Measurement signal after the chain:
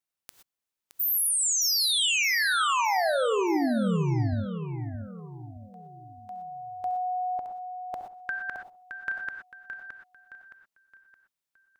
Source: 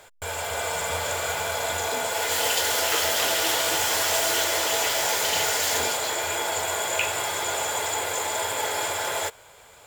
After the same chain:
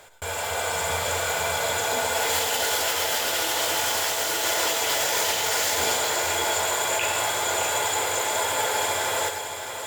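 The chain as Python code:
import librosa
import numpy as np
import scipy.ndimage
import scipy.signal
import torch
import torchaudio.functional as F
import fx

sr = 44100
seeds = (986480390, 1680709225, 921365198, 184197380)

p1 = fx.over_compress(x, sr, threshold_db=-25.0, ratio=-0.5)
p2 = p1 + fx.echo_feedback(p1, sr, ms=618, feedback_pct=38, wet_db=-8, dry=0)
y = fx.rev_gated(p2, sr, seeds[0], gate_ms=140, shape='rising', drr_db=7.0)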